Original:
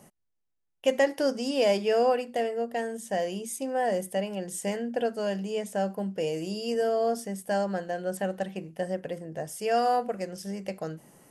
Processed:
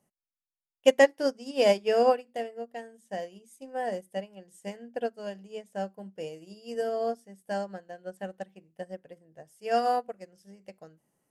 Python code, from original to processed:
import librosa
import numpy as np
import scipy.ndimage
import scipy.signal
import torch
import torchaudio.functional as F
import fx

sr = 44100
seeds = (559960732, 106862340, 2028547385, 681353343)

y = fx.upward_expand(x, sr, threshold_db=-36.0, expansion=2.5)
y = F.gain(torch.from_numpy(y), 5.5).numpy()